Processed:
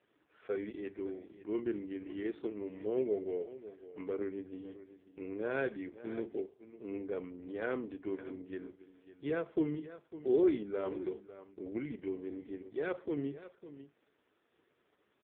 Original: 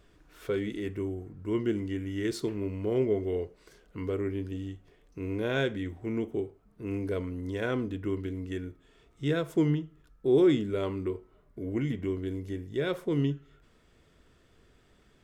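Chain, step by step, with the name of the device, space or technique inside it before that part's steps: satellite phone (BPF 300–3000 Hz; echo 0.552 s -14.5 dB; gain -3.5 dB; AMR-NB 4.75 kbps 8000 Hz)

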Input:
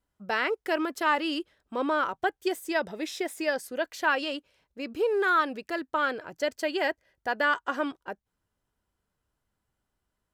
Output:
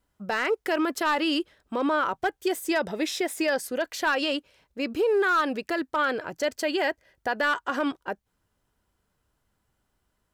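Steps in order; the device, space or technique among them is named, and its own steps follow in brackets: clipper into limiter (hard clip -18.5 dBFS, distortion -20 dB; limiter -24 dBFS, peak gain reduction 5.5 dB); gain +6.5 dB

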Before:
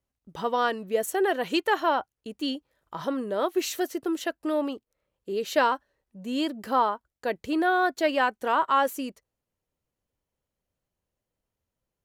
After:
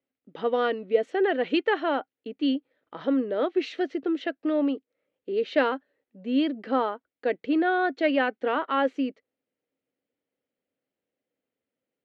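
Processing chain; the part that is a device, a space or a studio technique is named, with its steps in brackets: kitchen radio (speaker cabinet 230–3700 Hz, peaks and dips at 270 Hz +10 dB, 480 Hz +6 dB, 1000 Hz -9 dB, 2100 Hz +4 dB); 0.65–1.09 notch 1700 Hz, Q 8.7; gain -1 dB

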